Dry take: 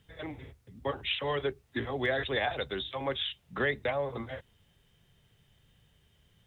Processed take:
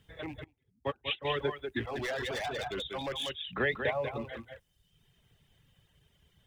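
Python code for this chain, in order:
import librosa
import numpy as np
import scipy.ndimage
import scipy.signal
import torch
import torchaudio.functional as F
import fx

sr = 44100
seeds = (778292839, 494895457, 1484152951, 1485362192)

y = fx.rattle_buzz(x, sr, strikes_db=-42.0, level_db=-40.0)
y = y + 10.0 ** (-5.0 / 20.0) * np.pad(y, (int(190 * sr / 1000.0), 0))[:len(y)]
y = fx.clip_hard(y, sr, threshold_db=-31.0, at=(1.83, 3.29), fade=0.02)
y = fx.dereverb_blind(y, sr, rt60_s=0.89)
y = fx.upward_expand(y, sr, threshold_db=-42.0, expansion=2.5, at=(0.44, 1.25))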